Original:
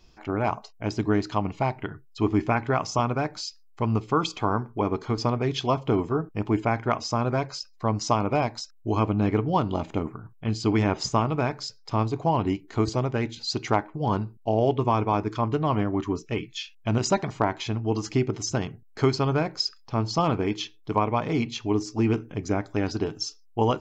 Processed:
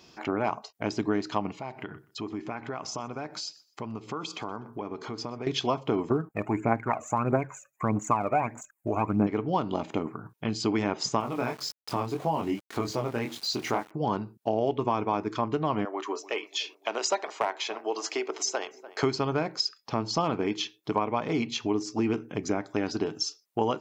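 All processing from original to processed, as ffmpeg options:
ffmpeg -i in.wav -filter_complex "[0:a]asettb=1/sr,asplit=3[link_01][link_02][link_03];[link_01]atrim=end=1.554[link_04];[link_02]atrim=start=1.55:end=5.47,asetpts=PTS-STARTPTS,afade=type=in:duration=0.004:curve=qsin,afade=type=out:start_time=3.916:duration=0.004:curve=qsin,acompressor=threshold=-44dB:ratio=2.5:attack=3.2:release=140:knee=1:detection=peak,aecho=1:1:124|248:0.0794|0.0199,atrim=end_sample=172872[link_05];[link_03]atrim=start=5.466[link_06];[link_04][link_05]acrossfade=duration=0.004:curve1=hsin:curve2=qsin[link_07];[link_07][link_06]acrossfade=duration=0.004:curve1=qsin:curve2=hsin,asettb=1/sr,asplit=3[link_08][link_09][link_10];[link_08]atrim=end=6.104[link_11];[link_09]atrim=start=6.1:end=9.27,asetpts=PTS-STARTPTS,afade=type=in:duration=0.004:curve=qsin,afade=type=out:start_time=3.166:duration=0.004:curve=qsin,asuperstop=centerf=4200:order=12:qfactor=1,aphaser=in_gain=1:out_gain=1:delay=1.8:decay=0.65:speed=1.6:type=triangular[link_12];[link_10]atrim=start=9.266[link_13];[link_11][link_12]acrossfade=duration=0.004:curve1=hsin:curve2=qsin[link_14];[link_14][link_13]acrossfade=duration=0.004:curve1=qsin:curve2=hsin,asettb=1/sr,asplit=3[link_15][link_16][link_17];[link_15]atrim=end=11.204[link_18];[link_16]atrim=start=11.2:end=13.91,asetpts=PTS-STARTPTS,afade=type=in:duration=0.004:curve=qsin,afade=type=out:start_time=2.706:duration=0.004:curve=qsin,flanger=delay=19.5:depth=6.1:speed=1.8,aeval=exprs='val(0)*gte(abs(val(0)),0.00631)':channel_layout=same[link_19];[link_17]atrim=start=13.906[link_20];[link_18][link_19]acrossfade=duration=0.004:curve1=hsin:curve2=qsin[link_21];[link_21][link_20]acrossfade=duration=0.004:curve1=qsin:curve2=hsin,asettb=1/sr,asplit=3[link_22][link_23][link_24];[link_22]atrim=end=15.854[link_25];[link_23]atrim=start=15.85:end=19.03,asetpts=PTS-STARTPTS,afade=type=in:duration=0.004:curve=qsin,afade=type=out:start_time=3.176:duration=0.004:curve=qsin,highpass=frequency=440:width=0.5412,highpass=frequency=440:width=1.3066,aeval=exprs='clip(val(0),-1,0.168)':channel_layout=same,asplit=2[link_26][link_27];[link_27]adelay=293,lowpass=frequency=1600:poles=1,volume=-21.5dB,asplit=2[link_28][link_29];[link_29]adelay=293,lowpass=frequency=1600:poles=1,volume=0.46,asplit=2[link_30][link_31];[link_31]adelay=293,lowpass=frequency=1600:poles=1,volume=0.46[link_32];[link_26][link_28][link_30][link_32]amix=inputs=4:normalize=0,atrim=end_sample=140238[link_33];[link_24]atrim=start=19.026[link_34];[link_25][link_33]acrossfade=duration=0.004:curve1=hsin:curve2=qsin[link_35];[link_35][link_34]acrossfade=duration=0.004:curve1=qsin:curve2=hsin,highpass=180,acompressor=threshold=-39dB:ratio=2,volume=7.5dB" out.wav

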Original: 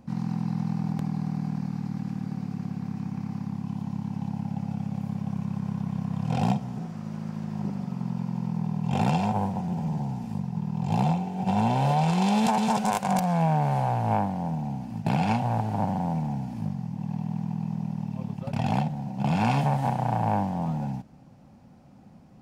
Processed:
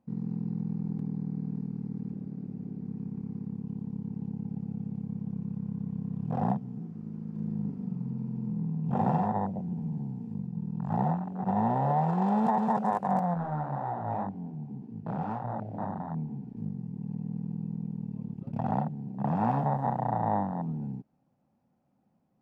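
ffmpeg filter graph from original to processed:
ffmpeg -i in.wav -filter_complex "[0:a]asettb=1/sr,asplit=3[link_01][link_02][link_03];[link_01]atrim=end=2.124[link_04];[link_02]atrim=start=2.12:end=2.85,asetpts=PTS-STARTPTS,afade=type=in:duration=0.004:curve=qsin,afade=type=out:start_time=0.726:duration=0.004:curve=qsin,asoftclip=type=hard:threshold=-31.5dB,bass=frequency=250:gain=3,treble=frequency=4000:gain=-1[link_05];[link_03]atrim=start=2.846[link_06];[link_04][link_05]acrossfade=duration=0.004:curve1=hsin:curve2=qsin[link_07];[link_07][link_06]acrossfade=duration=0.004:curve1=qsin:curve2=hsin,asettb=1/sr,asplit=3[link_08][link_09][link_10];[link_08]atrim=end=7.354[link_11];[link_09]atrim=start=7.35:end=9.27,asetpts=PTS-STARTPTS,afade=type=in:duration=0.004:curve=qsin,afade=type=out:start_time=1.916:duration=0.004:curve=qsin,acompressor=mode=upward:threshold=-28dB:ratio=2.5:attack=3.2:release=140:knee=2.83:detection=peak,asplit=2[link_12][link_13];[link_13]adelay=38,volume=-4.5dB[link_14];[link_12][link_14]amix=inputs=2:normalize=0,atrim=end_sample=84672[link_15];[link_10]atrim=start=9.266[link_16];[link_11][link_15]acrossfade=duration=0.004:curve1=hsin:curve2=qsin[link_17];[link_17][link_16]acrossfade=duration=0.004:curve1=qsin:curve2=hsin,asettb=1/sr,asplit=3[link_18][link_19][link_20];[link_18]atrim=end=13.344[link_21];[link_19]atrim=start=13.34:end=16.57,asetpts=PTS-STARTPTS,afade=type=in:duration=0.004:curve=qsin,afade=type=out:start_time=3.226:duration=0.004:curve=qsin,lowpass=6700,asoftclip=type=hard:threshold=-21.5dB,flanger=delay=18:depth=7.8:speed=1.9[link_22];[link_20]atrim=start=16.566[link_23];[link_21][link_22]acrossfade=duration=0.004:curve1=hsin:curve2=qsin[link_24];[link_24][link_23]acrossfade=duration=0.004:curve1=qsin:curve2=hsin,highshelf=frequency=2100:gain=-10,afwtdn=0.0355,lowshelf=frequency=130:gain=-12" out.wav

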